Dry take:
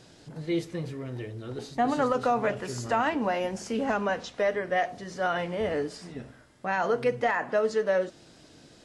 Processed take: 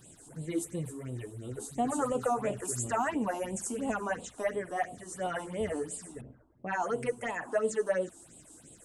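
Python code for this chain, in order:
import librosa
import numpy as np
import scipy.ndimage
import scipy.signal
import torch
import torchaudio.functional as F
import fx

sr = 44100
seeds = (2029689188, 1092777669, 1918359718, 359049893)

y = fx.phaser_stages(x, sr, stages=6, low_hz=130.0, high_hz=1700.0, hz=2.9, feedback_pct=20)
y = fx.high_shelf_res(y, sr, hz=6400.0, db=11.0, q=3.0)
y = fx.env_lowpass(y, sr, base_hz=580.0, full_db=-27.0, at=(6.21, 6.95))
y = F.gain(torch.from_numpy(y), -2.0).numpy()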